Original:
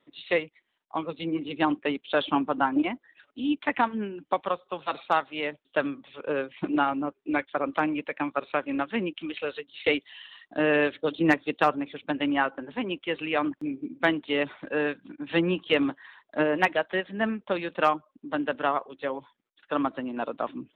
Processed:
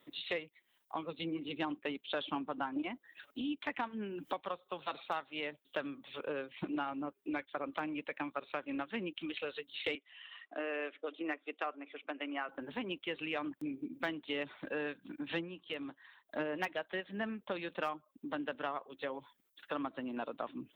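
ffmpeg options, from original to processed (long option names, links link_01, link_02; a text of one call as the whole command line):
ffmpeg -i in.wav -filter_complex "[0:a]asettb=1/sr,asplit=3[link_01][link_02][link_03];[link_01]atrim=end=3.414[link_04];[link_02]atrim=start=3.41:end=4.48,asetpts=PTS-STARTPTS,afade=type=in:duration=0.004:curve=qsin,afade=type=out:start_time=1.066:duration=0.004:curve=qsin,acompressor=mode=upward:threshold=-31dB:ratio=2.5:attack=3.2:release=140:knee=2.83:detection=peak[link_05];[link_03]atrim=start=4.476[link_06];[link_04][link_05]acrossfade=duration=0.004:curve1=hsin:curve2=qsin[link_07];[link_07][link_06]acrossfade=duration=0.004:curve1=qsin:curve2=hsin,asettb=1/sr,asplit=3[link_08][link_09][link_10];[link_08]atrim=end=9.954[link_11];[link_09]atrim=start=9.95:end=12.49,asetpts=PTS-STARTPTS,afade=type=in:duration=0.004:curve=qsin,afade=type=out:start_time=2.536:duration=0.004:curve=qsin,highpass=frequency=350:width=0.5412,highpass=frequency=350:width=1.3066,equalizer=frequency=370:width_type=q:width=4:gain=-6,equalizer=frequency=520:width_type=q:width=4:gain=-6,equalizer=frequency=900:width_type=q:width=4:gain=-8,equalizer=frequency=1700:width_type=q:width=4:gain=-6,lowpass=frequency=2500:width=0.5412,lowpass=frequency=2500:width=1.3066[link_12];[link_10]atrim=start=12.486[link_13];[link_11][link_12]acrossfade=duration=0.004:curve1=hsin:curve2=qsin[link_14];[link_14][link_13]acrossfade=duration=0.004:curve1=qsin:curve2=hsin,asplit=3[link_15][link_16][link_17];[link_15]atrim=end=15.49,asetpts=PTS-STARTPTS,afade=type=out:start_time=15.36:duration=0.13:silence=0.237137[link_18];[link_16]atrim=start=15.49:end=16.25,asetpts=PTS-STARTPTS,volume=-12.5dB[link_19];[link_17]atrim=start=16.25,asetpts=PTS-STARTPTS,afade=type=in:duration=0.13:silence=0.237137[link_20];[link_18][link_19][link_20]concat=n=3:v=0:a=1,acontrast=24,aemphasis=mode=production:type=50fm,acompressor=threshold=-38dB:ratio=2.5,volume=-3.5dB" out.wav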